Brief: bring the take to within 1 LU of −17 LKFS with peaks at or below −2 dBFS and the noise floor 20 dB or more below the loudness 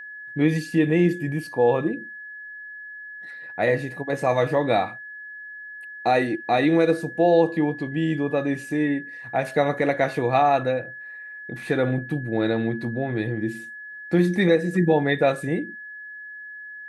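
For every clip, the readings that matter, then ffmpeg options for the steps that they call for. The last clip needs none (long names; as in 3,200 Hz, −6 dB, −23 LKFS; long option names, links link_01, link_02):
interfering tone 1,700 Hz; level of the tone −36 dBFS; integrated loudness −23.0 LKFS; sample peak −6.5 dBFS; target loudness −17.0 LKFS
→ -af "bandreject=frequency=1700:width=30"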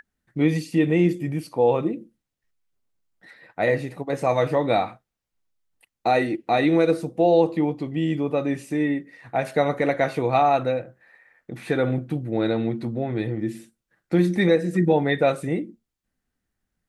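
interfering tone none found; integrated loudness −23.0 LKFS; sample peak −6.5 dBFS; target loudness −17.0 LKFS
→ -af "volume=6dB,alimiter=limit=-2dB:level=0:latency=1"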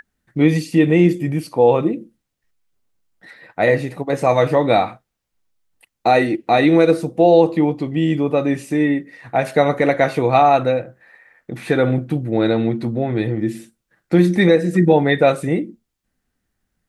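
integrated loudness −17.0 LKFS; sample peak −2.0 dBFS; background noise floor −77 dBFS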